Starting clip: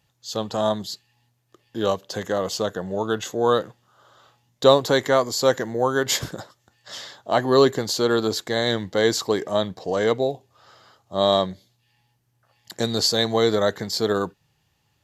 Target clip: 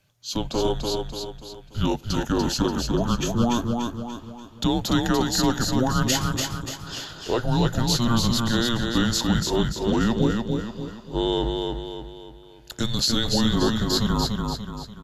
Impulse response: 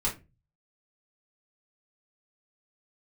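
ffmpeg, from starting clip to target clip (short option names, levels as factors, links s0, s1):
-af "alimiter=limit=0.224:level=0:latency=1:release=87,afreqshift=-240,aecho=1:1:291|582|873|1164|1455|1746:0.631|0.278|0.122|0.0537|0.0236|0.0104,volume=1.19"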